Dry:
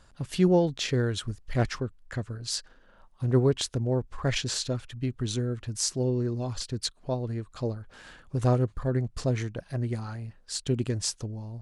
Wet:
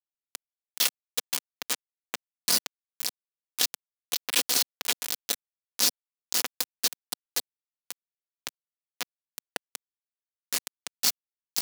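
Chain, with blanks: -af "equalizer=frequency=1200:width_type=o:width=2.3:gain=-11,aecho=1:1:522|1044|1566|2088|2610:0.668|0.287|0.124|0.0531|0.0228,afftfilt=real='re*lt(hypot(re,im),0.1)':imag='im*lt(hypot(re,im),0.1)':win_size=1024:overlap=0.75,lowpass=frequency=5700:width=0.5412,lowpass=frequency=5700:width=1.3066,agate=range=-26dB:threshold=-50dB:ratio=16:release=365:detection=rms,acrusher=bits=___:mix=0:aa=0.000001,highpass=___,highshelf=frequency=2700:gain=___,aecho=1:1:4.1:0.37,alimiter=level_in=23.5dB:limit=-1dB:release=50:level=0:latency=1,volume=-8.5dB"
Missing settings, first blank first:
4, 240, 5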